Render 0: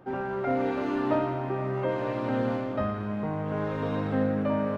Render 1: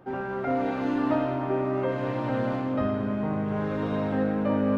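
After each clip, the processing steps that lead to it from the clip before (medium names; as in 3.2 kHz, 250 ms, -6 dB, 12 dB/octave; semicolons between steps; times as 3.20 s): algorithmic reverb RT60 4.5 s, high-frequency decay 0.4×, pre-delay 15 ms, DRR 6.5 dB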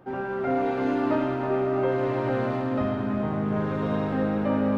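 multi-head delay 110 ms, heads first and third, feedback 69%, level -10 dB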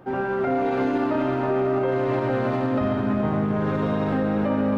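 peak limiter -20 dBFS, peak gain reduction 7 dB; trim +5 dB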